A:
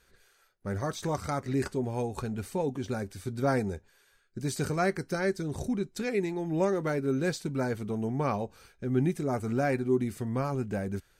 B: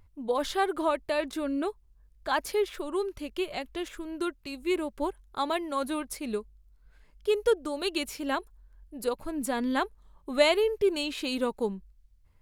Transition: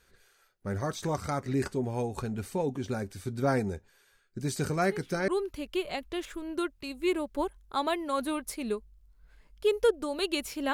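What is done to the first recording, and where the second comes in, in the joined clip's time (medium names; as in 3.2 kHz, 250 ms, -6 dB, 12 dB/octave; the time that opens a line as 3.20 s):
A
4.79 s: add B from 2.42 s 0.49 s -14.5 dB
5.28 s: go over to B from 2.91 s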